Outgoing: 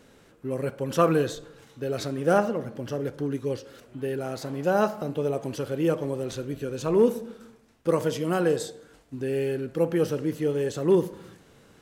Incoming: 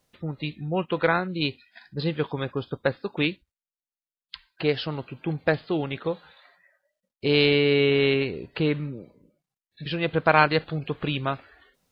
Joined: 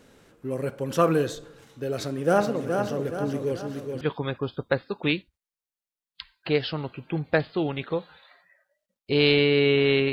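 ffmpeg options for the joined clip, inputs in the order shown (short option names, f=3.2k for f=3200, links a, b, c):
-filter_complex "[0:a]asplit=3[a][b][c];[a]afade=t=out:st=2.38:d=0.02[d];[b]aecho=1:1:422|844|1266|1688|2110|2532:0.531|0.255|0.122|0.0587|0.0282|0.0135,afade=t=in:st=2.38:d=0.02,afade=t=out:st=4.01:d=0.02[e];[c]afade=t=in:st=4.01:d=0.02[f];[d][e][f]amix=inputs=3:normalize=0,apad=whole_dur=10.12,atrim=end=10.12,atrim=end=4.012[g];[1:a]atrim=start=2.148:end=8.26[h];[g][h]acrossfade=d=0.004:c1=hsin:c2=hsin"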